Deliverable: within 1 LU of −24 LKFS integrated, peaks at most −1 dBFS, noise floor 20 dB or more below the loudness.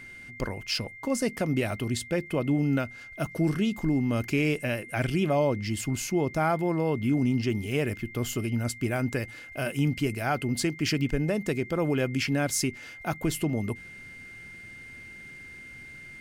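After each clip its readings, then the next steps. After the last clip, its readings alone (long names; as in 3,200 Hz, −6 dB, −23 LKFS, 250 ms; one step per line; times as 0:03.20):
interfering tone 2,100 Hz; level of the tone −43 dBFS; integrated loudness −28.5 LKFS; sample peak −15.0 dBFS; target loudness −24.0 LKFS
→ notch filter 2,100 Hz, Q 30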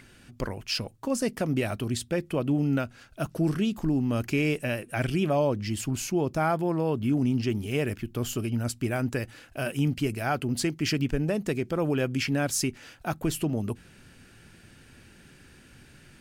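interfering tone none found; integrated loudness −28.5 LKFS; sample peak −15.5 dBFS; target loudness −24.0 LKFS
→ level +4.5 dB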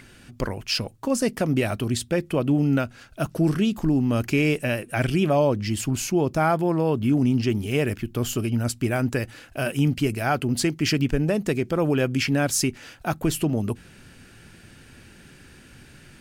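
integrated loudness −24.0 LKFS; sample peak −11.0 dBFS; background noise floor −50 dBFS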